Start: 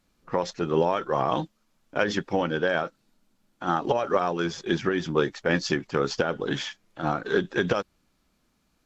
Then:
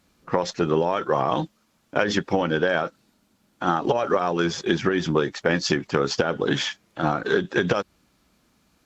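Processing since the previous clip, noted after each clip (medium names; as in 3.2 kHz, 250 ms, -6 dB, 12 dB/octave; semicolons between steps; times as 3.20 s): high-pass 51 Hz; compression, threshold -24 dBFS, peak gain reduction 7.5 dB; trim +7 dB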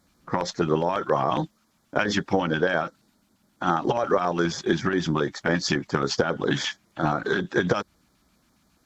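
LFO notch square 7.3 Hz 460–2700 Hz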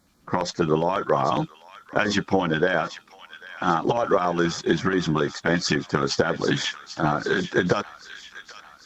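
feedback echo behind a high-pass 793 ms, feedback 56%, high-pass 1.7 kHz, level -11 dB; trim +1.5 dB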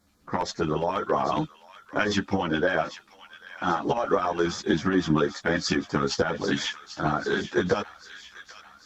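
chorus voices 6, 0.81 Hz, delay 12 ms, depth 2.5 ms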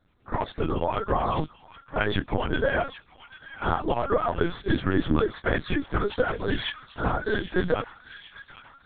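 LPC vocoder at 8 kHz pitch kept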